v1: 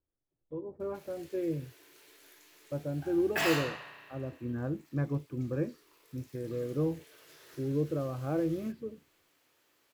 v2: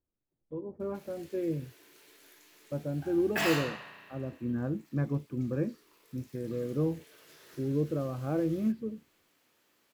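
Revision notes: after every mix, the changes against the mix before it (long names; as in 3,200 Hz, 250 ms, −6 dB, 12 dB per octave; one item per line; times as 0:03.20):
master: add parametric band 210 Hz +10 dB 0.36 octaves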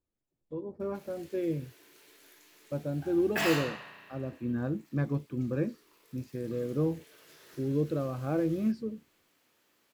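speech: remove high-frequency loss of the air 380 metres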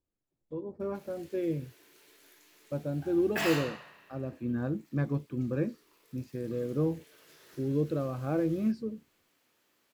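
background: send −6.5 dB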